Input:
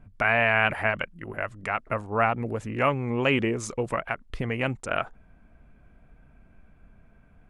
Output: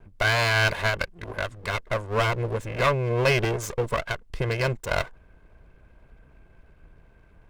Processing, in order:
lower of the sound and its delayed copy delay 1.9 ms
level +3 dB

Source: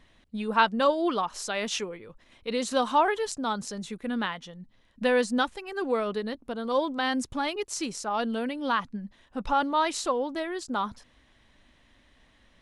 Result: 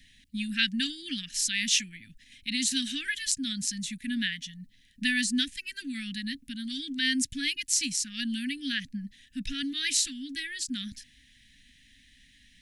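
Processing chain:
Chebyshev band-stop filter 280–1,700 Hz, order 5
high-shelf EQ 2,500 Hz +11 dB

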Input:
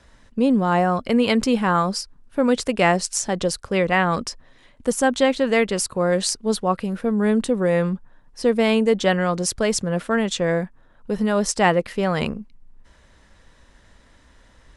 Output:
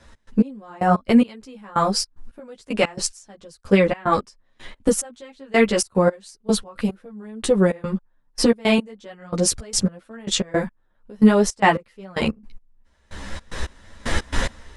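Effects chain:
camcorder AGC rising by 17 dB per second
gate pattern "x.x...x.x....x" 111 BPM −24 dB
string-ensemble chorus
level +5 dB

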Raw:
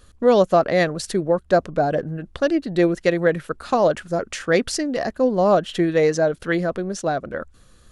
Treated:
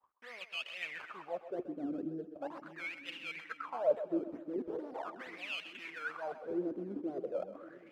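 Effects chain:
spectral magnitudes quantised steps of 15 dB
in parallel at −7 dB: wrap-around overflow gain 20.5 dB
on the sum: sample-and-hold swept by an LFO 16×, swing 100% 2.2 Hz
reversed playback
downward compressor 5 to 1, threshold −32 dBFS, peak gain reduction 18.5 dB
reversed playback
downward expander −45 dBFS
LFO wah 0.4 Hz 280–2,800 Hz, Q 10
echo with a time of its own for lows and highs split 310 Hz, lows 586 ms, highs 128 ms, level −12 dB
level +8.5 dB

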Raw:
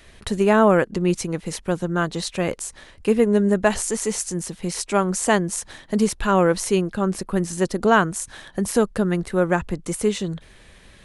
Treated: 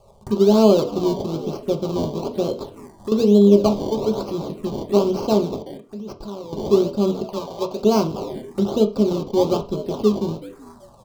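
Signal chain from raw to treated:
loose part that buzzes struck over −32 dBFS, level −22 dBFS
in parallel at −5 dB: soft clipping −19.5 dBFS, distortion −7 dB
on the sum: echo with shifted repeats 380 ms, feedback 40%, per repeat +76 Hz, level −15 dB
sample-and-hold swept by an LFO 23×, swing 100% 1.1 Hz
octave-band graphic EQ 125/250/500/1,000/2,000/4,000/8,000 Hz +7/+10/+9/+8/−6/+6/+7 dB
phaser swept by the level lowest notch 270 Hz, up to 1,800 Hz, full sweep at −10 dBFS
0:05.56–0:06.53: output level in coarse steps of 22 dB
0:07.23–0:07.83: low shelf with overshoot 450 Hz −9 dB, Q 1.5
on a send at −3 dB: convolution reverb RT60 0.30 s, pre-delay 3 ms
0:02.63–0:03.12: on the sum: downward compressor 2 to 1, threshold −21 dBFS, peak gain reduction 12.5 dB
level −13 dB

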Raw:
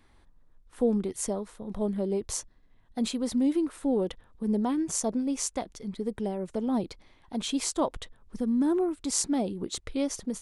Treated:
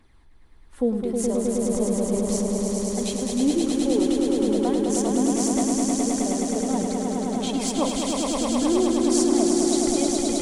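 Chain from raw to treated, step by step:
phase shifter 0.57 Hz, delay 4 ms, feedback 42%
echo that builds up and dies away 105 ms, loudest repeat 5, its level −4 dB

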